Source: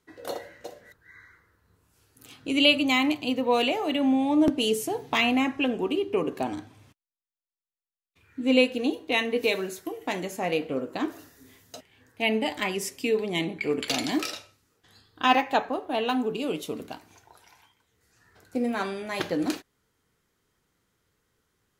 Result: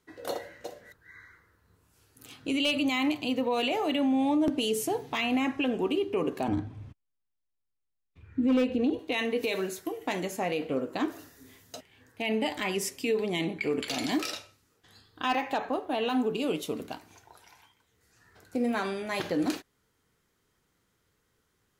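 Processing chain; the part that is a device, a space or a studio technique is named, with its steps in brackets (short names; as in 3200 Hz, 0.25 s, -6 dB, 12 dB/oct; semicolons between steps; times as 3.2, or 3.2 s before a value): 6.48–8.99 RIAA curve playback; clipper into limiter (hard clip -12 dBFS, distortion -21 dB; limiter -19.5 dBFS, peak gain reduction 7.5 dB)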